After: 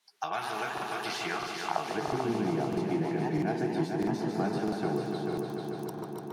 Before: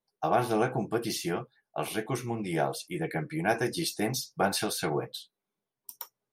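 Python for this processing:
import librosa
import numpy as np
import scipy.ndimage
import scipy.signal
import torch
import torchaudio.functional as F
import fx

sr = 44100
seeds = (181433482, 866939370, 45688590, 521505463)

p1 = fx.recorder_agc(x, sr, target_db=-21.0, rise_db_per_s=39.0, max_gain_db=30)
p2 = fx.filter_sweep_bandpass(p1, sr, from_hz=4100.0, to_hz=290.0, start_s=0.98, end_s=2.39, q=0.72)
p3 = fx.echo_pitch(p2, sr, ms=144, semitones=2, count=2, db_per_echo=-6.0)
p4 = fx.peak_eq(p3, sr, hz=530.0, db=-14.5, octaves=0.22)
p5 = p4 + fx.echo_heads(p4, sr, ms=147, heads='all three', feedback_pct=57, wet_db=-9.5, dry=0)
p6 = fx.buffer_crackle(p5, sr, first_s=0.73, period_s=0.65, block=2048, kind='repeat')
y = fx.band_squash(p6, sr, depth_pct=70)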